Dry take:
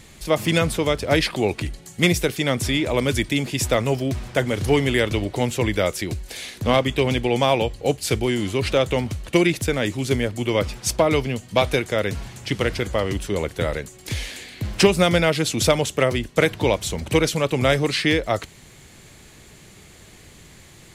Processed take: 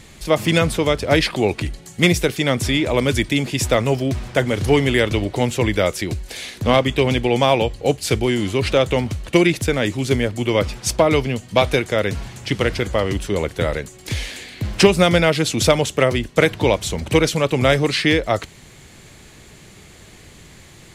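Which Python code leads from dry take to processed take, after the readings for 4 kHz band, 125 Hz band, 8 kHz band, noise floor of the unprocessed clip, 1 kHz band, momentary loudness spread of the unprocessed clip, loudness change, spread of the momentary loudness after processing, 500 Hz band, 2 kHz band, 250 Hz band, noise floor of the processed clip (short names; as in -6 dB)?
+2.5 dB, +3.0 dB, +1.5 dB, -47 dBFS, +3.0 dB, 8 LU, +3.0 dB, 8 LU, +3.0 dB, +3.0 dB, +3.0 dB, -45 dBFS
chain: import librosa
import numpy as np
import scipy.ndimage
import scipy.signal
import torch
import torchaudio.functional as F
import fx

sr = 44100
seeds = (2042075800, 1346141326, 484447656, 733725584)

y = fx.high_shelf(x, sr, hz=10000.0, db=-5.0)
y = y * 10.0 ** (3.0 / 20.0)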